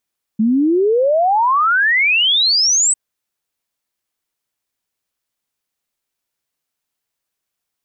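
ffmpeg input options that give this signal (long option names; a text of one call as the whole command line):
ffmpeg -f lavfi -i "aevalsrc='0.282*clip(min(t,2.55-t)/0.01,0,1)*sin(2*PI*210*2.55/log(8200/210)*(exp(log(8200/210)*t/2.55)-1))':duration=2.55:sample_rate=44100" out.wav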